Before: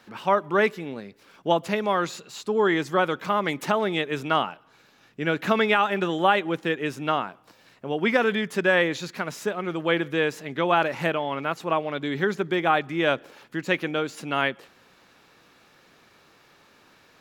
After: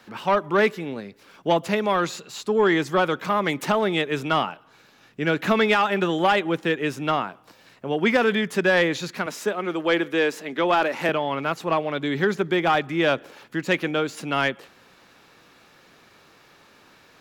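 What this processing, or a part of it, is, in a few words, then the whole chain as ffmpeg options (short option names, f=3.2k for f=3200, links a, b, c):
one-band saturation: -filter_complex "[0:a]asettb=1/sr,asplit=3[a][b][c];[a]atrim=end=9.264[d];[b]atrim=start=9.26:end=11.09,asetpts=PTS-STARTPTS,afade=t=in:d=0.004:c=qsin,afade=t=out:st=1.826:d=0.004:c=qsin,highpass=f=200:w=0.5412,highpass=f=200:w=1.3066[e];[c]atrim=start=11.086[f];[d][e]acrossfade=d=0.004:c1=hsin:c2=qsin[g];[g][f]acrossfade=d=0.004:c1=qsin:c2=hsin,acrossover=split=380|3400[h][i][j];[i]asoftclip=type=tanh:threshold=-16.5dB[k];[h][k][j]amix=inputs=3:normalize=0,volume=3dB"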